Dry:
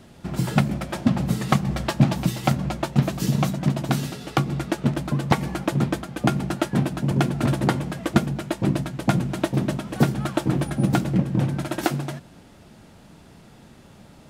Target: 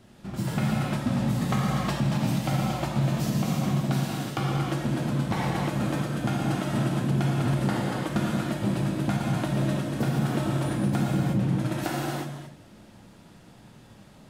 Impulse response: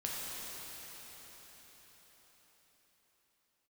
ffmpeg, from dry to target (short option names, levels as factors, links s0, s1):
-filter_complex "[1:a]atrim=start_sample=2205,afade=t=out:st=0.42:d=0.01,atrim=end_sample=18963[s0];[0:a][s0]afir=irnorm=-1:irlink=0,alimiter=limit=0.266:level=0:latency=1:release=78,volume=0.596"